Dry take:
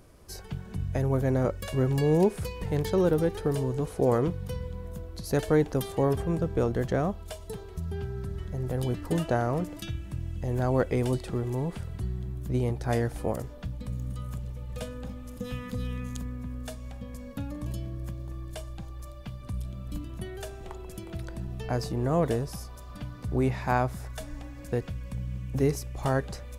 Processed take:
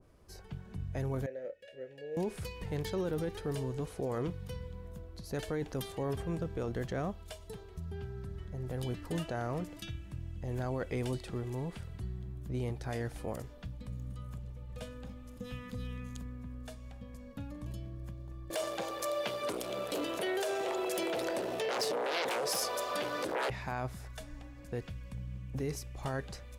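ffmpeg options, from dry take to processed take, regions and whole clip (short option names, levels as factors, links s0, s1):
-filter_complex "[0:a]asettb=1/sr,asplit=3[s0][s1][s2];[s0]atrim=end=1.264[s3];[s1]atrim=start=1.26:end=2.17,asetpts=PTS-STARTPTS,afade=t=in:d=0.004:c=qsin,afade=t=out:st=0.906:d=0.004:c=qsin,asplit=3[s4][s5][s6];[s4]bandpass=f=530:t=q:w=8,volume=1[s7];[s5]bandpass=f=1840:t=q:w=8,volume=0.501[s8];[s6]bandpass=f=2480:t=q:w=8,volume=0.355[s9];[s7][s8][s9]amix=inputs=3:normalize=0,highshelf=f=5200:g=7,asplit=2[s10][s11];[s11]adelay=28,volume=0.282[s12];[s10][s12]amix=inputs=2:normalize=0,atrim=end_sample=40131[s13];[s2]atrim=start=2.166[s14];[s3][s13]acrossfade=d=0.004:c1=hsin:c2=qsin[s15];[s15][s14]acrossfade=d=0.004:c1=qsin:c2=hsin,asettb=1/sr,asplit=3[s16][s17][s18];[s16]atrim=end=18.504[s19];[s17]atrim=start=18.5:end=23.5,asetpts=PTS-STARTPTS,afade=t=in:d=0.004:c=qsin,afade=t=out:st=4.996:d=0.004:c=qsin,aeval=exprs='0.188*sin(PI/2*6.31*val(0)/0.188)':c=same,highpass=f=500:t=q:w=2.7[s20];[s18]atrim=start=23.496[s21];[s19][s20]acrossfade=d=0.004:c1=hsin:c2=qsin[s22];[s22][s21]acrossfade=d=0.004:c1=qsin:c2=hsin,highshelf=f=5400:g=-7,alimiter=limit=0.1:level=0:latency=1:release=12,adynamicequalizer=threshold=0.00447:dfrequency=1600:dqfactor=0.7:tfrequency=1600:tqfactor=0.7:attack=5:release=100:ratio=0.375:range=3.5:mode=boostabove:tftype=highshelf,volume=0.422"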